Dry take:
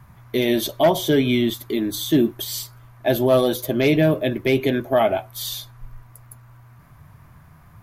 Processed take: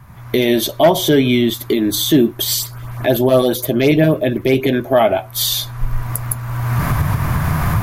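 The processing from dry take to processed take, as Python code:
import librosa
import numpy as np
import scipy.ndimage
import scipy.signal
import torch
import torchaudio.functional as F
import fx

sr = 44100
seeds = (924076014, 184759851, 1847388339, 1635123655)

y = fx.recorder_agc(x, sr, target_db=-13.0, rise_db_per_s=29.0, max_gain_db=30)
y = fx.filter_lfo_notch(y, sr, shape='saw_up', hz=8.0, low_hz=470.0, high_hz=7500.0, q=1.3, at=(2.54, 4.73))
y = y * 10.0 ** (5.0 / 20.0)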